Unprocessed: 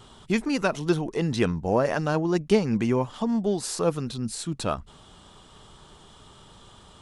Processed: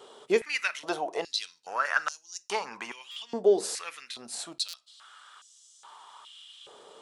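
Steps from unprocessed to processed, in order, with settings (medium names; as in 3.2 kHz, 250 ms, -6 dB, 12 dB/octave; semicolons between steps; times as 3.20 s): reverberation RT60 0.40 s, pre-delay 7 ms, DRR 15 dB; buffer glitch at 3.11/4.68 s, samples 256, times 8; step-sequenced high-pass 2.4 Hz 460–6200 Hz; trim -2.5 dB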